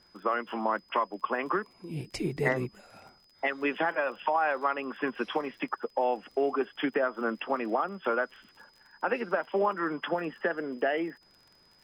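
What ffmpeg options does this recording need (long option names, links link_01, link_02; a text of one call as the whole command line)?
ffmpeg -i in.wav -af "adeclick=threshold=4,bandreject=frequency=5000:width=30" out.wav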